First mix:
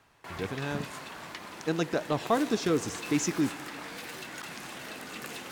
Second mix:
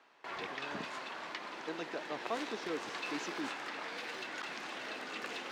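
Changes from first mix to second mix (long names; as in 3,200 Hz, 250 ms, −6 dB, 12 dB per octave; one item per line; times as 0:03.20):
speech −11.0 dB
master: add three-way crossover with the lows and the highs turned down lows −19 dB, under 250 Hz, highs −21 dB, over 5,800 Hz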